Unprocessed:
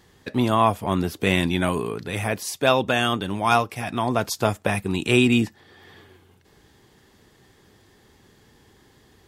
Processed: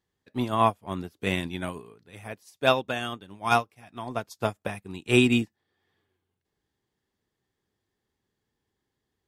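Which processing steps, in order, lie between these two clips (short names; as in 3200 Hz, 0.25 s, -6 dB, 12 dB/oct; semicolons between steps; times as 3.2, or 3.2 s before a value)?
upward expander 2.5:1, over -32 dBFS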